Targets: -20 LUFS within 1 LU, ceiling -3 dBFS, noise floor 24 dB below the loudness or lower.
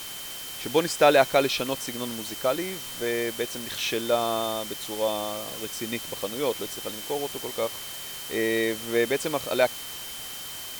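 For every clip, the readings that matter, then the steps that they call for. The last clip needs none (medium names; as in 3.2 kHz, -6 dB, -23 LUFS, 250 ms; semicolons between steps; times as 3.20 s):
steady tone 3.1 kHz; tone level -41 dBFS; noise floor -38 dBFS; noise floor target -51 dBFS; loudness -27.0 LUFS; peak level -5.0 dBFS; loudness target -20.0 LUFS
-> band-stop 3.1 kHz, Q 30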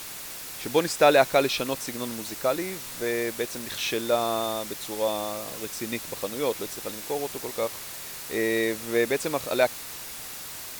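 steady tone not found; noise floor -39 dBFS; noise floor target -52 dBFS
-> noise reduction 13 dB, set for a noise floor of -39 dBFS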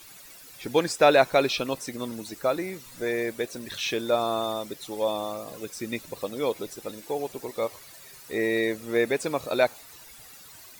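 noise floor -48 dBFS; noise floor target -52 dBFS
-> noise reduction 6 dB, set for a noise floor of -48 dBFS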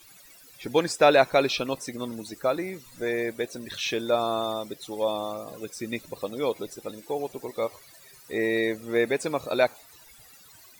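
noise floor -52 dBFS; loudness -27.5 LUFS; peak level -5.5 dBFS; loudness target -20.0 LUFS
-> trim +7.5 dB; peak limiter -3 dBFS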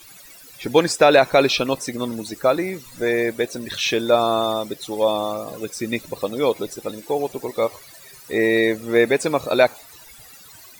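loudness -20.5 LUFS; peak level -3.0 dBFS; noise floor -45 dBFS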